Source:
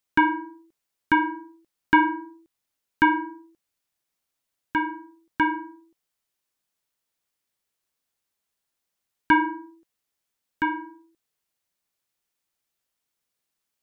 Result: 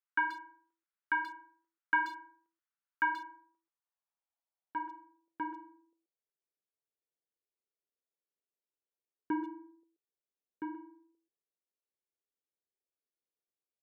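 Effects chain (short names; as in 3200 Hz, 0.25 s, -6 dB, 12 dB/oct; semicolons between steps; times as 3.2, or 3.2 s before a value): band-pass sweep 1400 Hz -> 420 Hz, 2.9–6.4; speakerphone echo 0.13 s, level -11 dB; gain -6 dB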